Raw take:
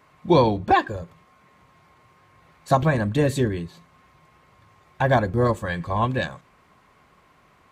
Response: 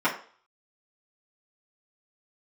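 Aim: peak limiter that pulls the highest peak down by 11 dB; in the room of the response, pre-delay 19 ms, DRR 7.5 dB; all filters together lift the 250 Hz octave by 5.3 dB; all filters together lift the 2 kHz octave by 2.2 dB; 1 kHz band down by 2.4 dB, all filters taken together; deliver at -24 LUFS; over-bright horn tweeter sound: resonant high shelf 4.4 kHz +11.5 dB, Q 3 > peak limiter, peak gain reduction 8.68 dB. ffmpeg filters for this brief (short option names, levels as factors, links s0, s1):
-filter_complex "[0:a]equalizer=f=250:t=o:g=7.5,equalizer=f=1000:t=o:g=-4.5,equalizer=f=2000:t=o:g=7,alimiter=limit=0.211:level=0:latency=1,asplit=2[s0][s1];[1:a]atrim=start_sample=2205,adelay=19[s2];[s1][s2]afir=irnorm=-1:irlink=0,volume=0.0794[s3];[s0][s3]amix=inputs=2:normalize=0,highshelf=f=4400:t=q:w=3:g=11.5,volume=1.58,alimiter=limit=0.188:level=0:latency=1"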